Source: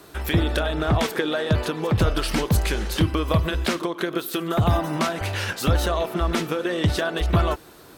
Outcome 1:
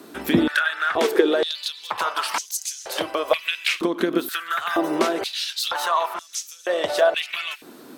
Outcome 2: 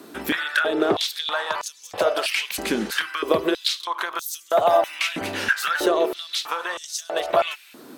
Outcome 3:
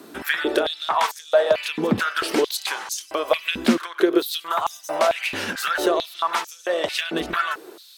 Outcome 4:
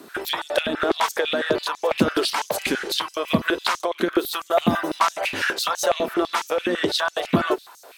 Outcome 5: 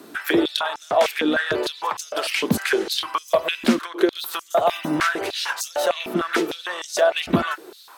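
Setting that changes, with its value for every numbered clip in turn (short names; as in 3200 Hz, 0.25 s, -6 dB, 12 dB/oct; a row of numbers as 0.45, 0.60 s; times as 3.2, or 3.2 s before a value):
stepped high-pass, rate: 2.1, 3.1, 4.5, 12, 6.6 Hz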